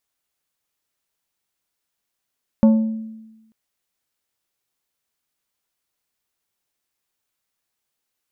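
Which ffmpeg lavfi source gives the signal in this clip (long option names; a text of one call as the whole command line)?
ffmpeg -f lavfi -i "aevalsrc='0.422*pow(10,-3*t/1.11)*sin(2*PI*221*t)+0.133*pow(10,-3*t/0.584)*sin(2*PI*552.5*t)+0.0422*pow(10,-3*t/0.421)*sin(2*PI*884*t)+0.0133*pow(10,-3*t/0.36)*sin(2*PI*1105*t)+0.00422*pow(10,-3*t/0.299)*sin(2*PI*1436.5*t)':duration=0.89:sample_rate=44100" out.wav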